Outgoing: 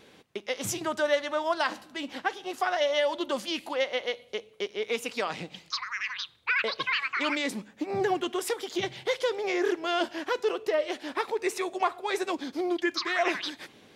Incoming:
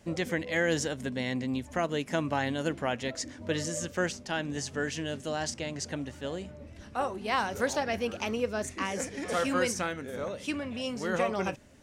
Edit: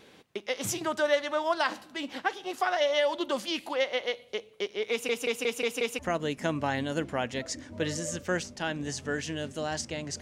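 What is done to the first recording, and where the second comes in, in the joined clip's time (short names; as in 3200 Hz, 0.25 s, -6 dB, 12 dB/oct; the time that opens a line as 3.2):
outgoing
4.91 stutter in place 0.18 s, 6 plays
5.99 switch to incoming from 1.68 s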